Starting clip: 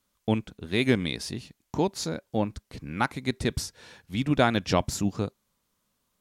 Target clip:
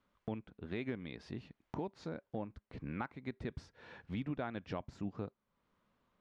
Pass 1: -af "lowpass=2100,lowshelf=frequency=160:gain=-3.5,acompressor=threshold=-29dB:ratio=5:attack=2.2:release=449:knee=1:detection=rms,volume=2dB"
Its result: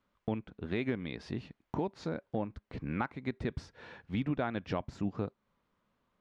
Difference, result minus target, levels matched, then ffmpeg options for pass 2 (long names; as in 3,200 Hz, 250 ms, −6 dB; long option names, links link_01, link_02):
downward compressor: peak gain reduction −6.5 dB
-af "lowpass=2100,lowshelf=frequency=160:gain=-3.5,acompressor=threshold=-37dB:ratio=5:attack=2.2:release=449:knee=1:detection=rms,volume=2dB"